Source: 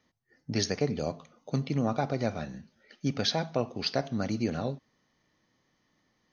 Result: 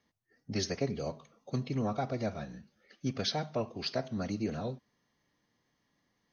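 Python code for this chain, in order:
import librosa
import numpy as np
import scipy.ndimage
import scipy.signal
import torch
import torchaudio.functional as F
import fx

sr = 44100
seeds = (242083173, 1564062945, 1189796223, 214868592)

y = fx.pitch_keep_formants(x, sr, semitones=-1.0)
y = y * 10.0 ** (-4.0 / 20.0)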